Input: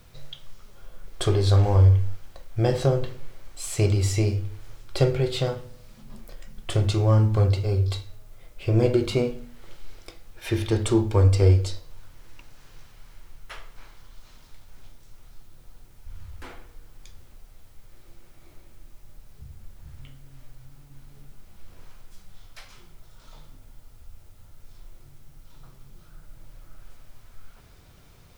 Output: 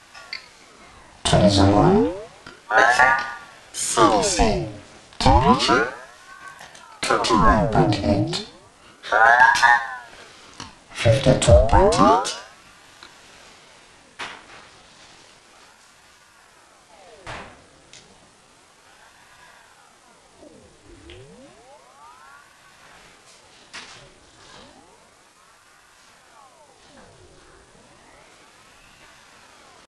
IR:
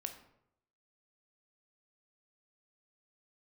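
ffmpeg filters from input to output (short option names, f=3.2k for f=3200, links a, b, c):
-filter_complex "[0:a]highpass=200,bandreject=f=890:w=12,flanger=delay=19:depth=5.4:speed=0.51,atempo=0.95,asplit=2[a][b];[b]adelay=109,lowpass=f=2k:p=1,volume=-16dB,asplit=2[c][d];[d]adelay=109,lowpass=f=2k:p=1,volume=0.38,asplit=2[e][f];[f]adelay=109,lowpass=f=2k:p=1,volume=0.38[g];[c][e][g]amix=inputs=3:normalize=0[h];[a][h]amix=inputs=2:normalize=0,aresample=22050,aresample=44100,alimiter=level_in=16dB:limit=-1dB:release=50:level=0:latency=1,aeval=exprs='val(0)*sin(2*PI*760*n/s+760*0.75/0.31*sin(2*PI*0.31*n/s))':c=same"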